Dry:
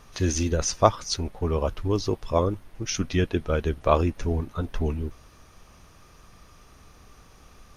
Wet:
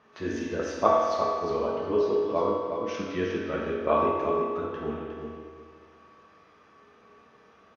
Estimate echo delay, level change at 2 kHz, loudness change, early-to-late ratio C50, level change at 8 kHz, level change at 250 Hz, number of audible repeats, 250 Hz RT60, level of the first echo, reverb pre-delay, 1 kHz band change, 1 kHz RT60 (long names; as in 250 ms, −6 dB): 360 ms, −1.0 dB, −1.5 dB, −1.5 dB, below −15 dB, −3.5 dB, 1, 1.7 s, −7.5 dB, 5 ms, +1.5 dB, 1.8 s